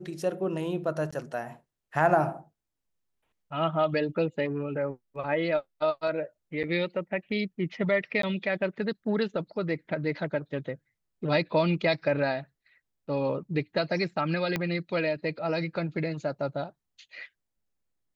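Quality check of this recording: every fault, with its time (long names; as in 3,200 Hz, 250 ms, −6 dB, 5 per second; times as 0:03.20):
0:01.11–0:01.12: drop-out 15 ms
0:06.63–0:06.64: drop-out 6.5 ms
0:08.22–0:08.23: drop-out 13 ms
0:14.56: click −14 dBFS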